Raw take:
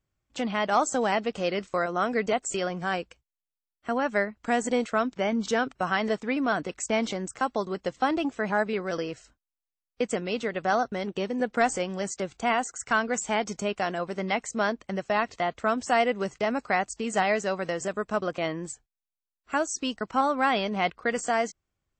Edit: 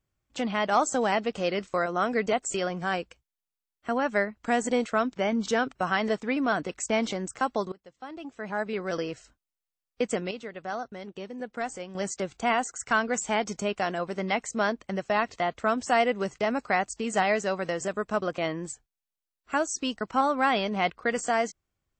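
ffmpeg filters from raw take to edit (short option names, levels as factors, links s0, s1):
-filter_complex "[0:a]asplit=4[s0][s1][s2][s3];[s0]atrim=end=7.72,asetpts=PTS-STARTPTS,afade=t=out:st=7.716:d=0.004:c=hsin:silence=0.0794328[s4];[s1]atrim=start=7.72:end=10.312,asetpts=PTS-STARTPTS,afade=t=in:d=1.19:c=qua:silence=0.0794328[s5];[s2]atrim=start=10.308:end=11.952,asetpts=PTS-STARTPTS,volume=0.355[s6];[s3]atrim=start=11.948[s7];[s4][s5]concat=n=2:v=0:a=1[s8];[s8][s6]acrossfade=d=0.004:c1=hsin:c2=hsin[s9];[s9][s7]acrossfade=d=0.004:c1=hsin:c2=hsin"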